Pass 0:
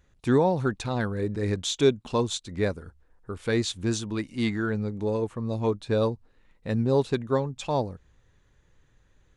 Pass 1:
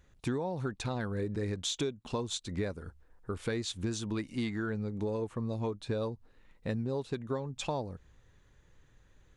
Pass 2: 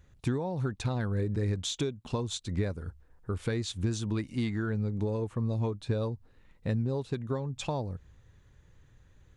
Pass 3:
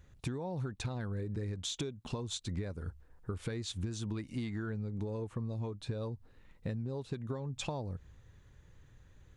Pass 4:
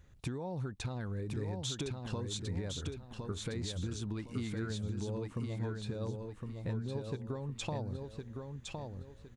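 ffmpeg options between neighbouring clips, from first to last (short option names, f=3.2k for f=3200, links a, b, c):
-af "acompressor=threshold=-30dB:ratio=12"
-af "equalizer=f=94:w=0.74:g=7.5"
-af "acompressor=threshold=-34dB:ratio=6"
-af "aecho=1:1:1061|2122|3183|4244:0.596|0.185|0.0572|0.0177,volume=-1dB"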